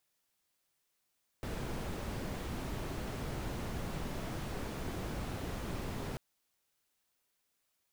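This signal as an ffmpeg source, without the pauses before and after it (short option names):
-f lavfi -i "anoisesrc=c=brown:a=0.0556:d=4.74:r=44100:seed=1"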